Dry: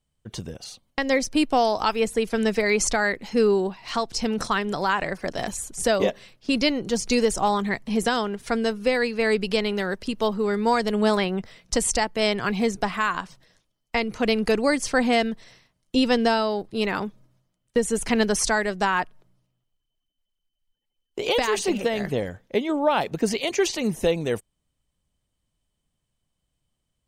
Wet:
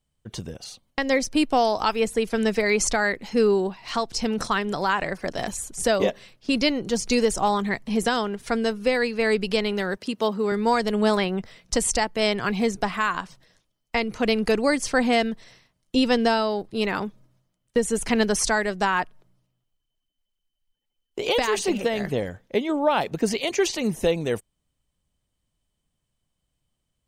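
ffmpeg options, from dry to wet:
ffmpeg -i in.wav -filter_complex "[0:a]asettb=1/sr,asplit=3[link_01][link_02][link_03];[link_01]atrim=end=9.974[link_04];[link_02]atrim=start=9.97:end=10.52,asetpts=PTS-STARTPTS,afade=type=in:duration=0.004:curve=qsin,afade=type=out:start_time=0.546:duration=0.004:curve=qsin,highpass=140[link_05];[link_03]atrim=start=10.516[link_06];[link_04][link_05]acrossfade=duration=0.004:curve1=hsin:curve2=qsin[link_07];[link_07][link_06]acrossfade=duration=0.004:curve1=qsin:curve2=hsin" out.wav

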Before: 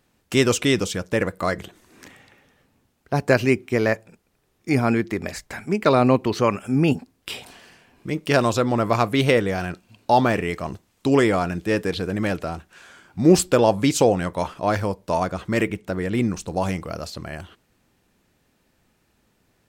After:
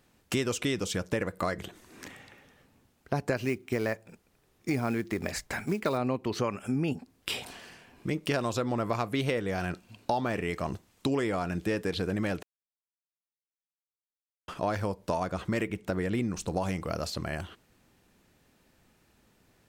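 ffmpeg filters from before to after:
ffmpeg -i in.wav -filter_complex "[0:a]asettb=1/sr,asplit=3[link_01][link_02][link_03];[link_01]atrim=end=3.364[link_04];[link_02]atrim=start=3.36:end=5.98,asetpts=PTS-STARTPTS,afade=type=in:duration=0.004:curve=qsin,afade=type=out:start_time=2.616:duration=0.004:curve=qsin,acrusher=bits=6:mode=log:mix=0:aa=0.000001[link_05];[link_03]atrim=start=5.976[link_06];[link_04][link_05]acrossfade=duration=0.004:curve1=hsin:curve2=qsin[link_07];[link_07][link_06]acrossfade=duration=0.004:curve1=qsin:curve2=hsin,asplit=3[link_08][link_09][link_10];[link_08]atrim=end=12.43,asetpts=PTS-STARTPTS,afade=type=out:start_time=12.426:duration=0.004:curve=hsin[link_11];[link_09]atrim=start=12.43:end=14.48,asetpts=PTS-STARTPTS,volume=0[link_12];[link_10]atrim=start=14.48,asetpts=PTS-STARTPTS,afade=type=in:duration=0.004:curve=hsin[link_13];[link_11][link_12][link_13]concat=n=3:v=0:a=1,acompressor=threshold=-27dB:ratio=5" out.wav

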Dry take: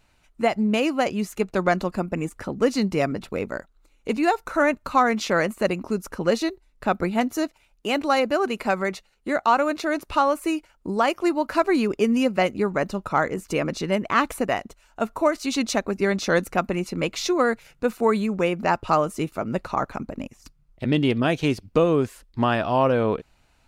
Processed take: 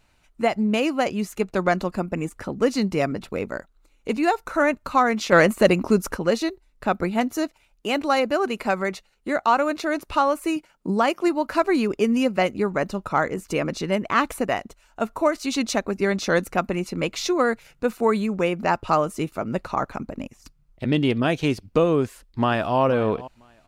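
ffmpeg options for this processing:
ffmpeg -i in.wav -filter_complex "[0:a]asettb=1/sr,asplit=3[link_01][link_02][link_03];[link_01]atrim=end=5.324[link_04];[link_02]atrim=start=5.32:end=6.17,asetpts=PTS-STARTPTS,afade=type=in:duration=0.004:curve=qsin,afade=type=out:start_time=0.846:duration=0.004:curve=qsin,acontrast=89[link_05];[link_03]atrim=start=6.166[link_06];[link_04][link_05]acrossfade=duration=0.004:curve1=hsin:curve2=qsin[link_07];[link_07][link_06]acrossfade=duration=0.004:curve1=qsin:curve2=hsin,asettb=1/sr,asplit=3[link_08][link_09][link_10];[link_08]atrim=end=10.564[link_11];[link_09]atrim=start=10.56:end=11.28,asetpts=PTS-STARTPTS,afade=type=in:duration=0.004:curve=qsin,afade=type=out:start_time=0.716:duration=0.004:curve=qsin,lowshelf=frequency=120:width_type=q:width=3:gain=-9.5[link_12];[link_10]atrim=start=11.276[link_13];[link_11][link_12]acrossfade=duration=0.004:curve1=hsin:curve2=qsin[link_14];[link_14][link_13]acrossfade=duration=0.004:curve1=qsin:curve2=hsin,asplit=2[link_15][link_16];[link_16]afade=type=in:start_time=22.02:duration=0.01,afade=type=out:start_time=22.78:duration=0.01,aecho=0:1:490|980:0.149624|0.0224435[link_17];[link_15][link_17]amix=inputs=2:normalize=0" out.wav

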